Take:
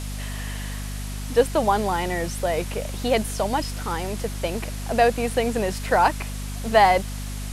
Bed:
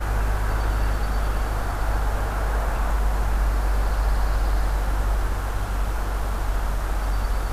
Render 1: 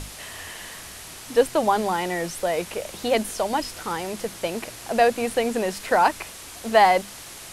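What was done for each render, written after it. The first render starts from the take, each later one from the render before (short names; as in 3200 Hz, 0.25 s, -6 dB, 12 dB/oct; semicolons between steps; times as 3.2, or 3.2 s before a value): notches 50/100/150/200/250 Hz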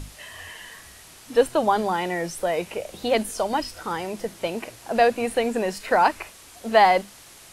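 noise print and reduce 7 dB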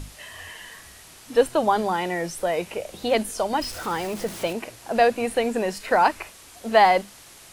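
3.61–4.53 zero-crossing step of -34 dBFS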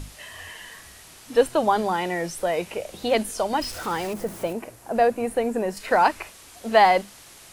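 4.13–5.77 bell 3700 Hz -10 dB 2.1 oct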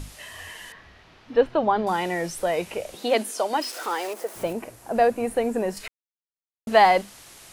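0.72–1.87 air absorption 270 m; 2.94–4.35 HPF 200 Hz -> 420 Hz 24 dB/oct; 5.88–6.67 mute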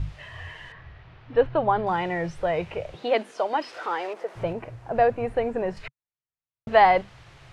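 LPF 2700 Hz 12 dB/oct; resonant low shelf 170 Hz +7.5 dB, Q 3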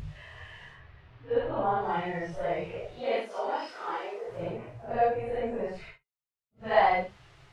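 phase scrambler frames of 0.2 s; resonator 410 Hz, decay 0.21 s, harmonics odd, mix 50%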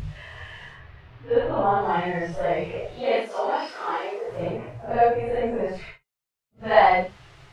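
gain +6.5 dB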